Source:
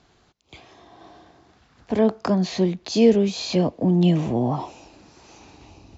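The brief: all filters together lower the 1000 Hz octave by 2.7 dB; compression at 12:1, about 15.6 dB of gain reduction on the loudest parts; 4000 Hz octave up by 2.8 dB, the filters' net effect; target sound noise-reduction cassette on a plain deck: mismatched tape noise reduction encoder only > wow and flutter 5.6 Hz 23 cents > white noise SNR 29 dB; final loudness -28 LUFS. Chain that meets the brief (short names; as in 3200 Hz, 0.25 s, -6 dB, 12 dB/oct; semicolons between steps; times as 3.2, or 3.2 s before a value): bell 1000 Hz -4 dB; bell 4000 Hz +3.5 dB; compressor 12:1, threshold -26 dBFS; mismatched tape noise reduction encoder only; wow and flutter 5.6 Hz 23 cents; white noise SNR 29 dB; gain +3 dB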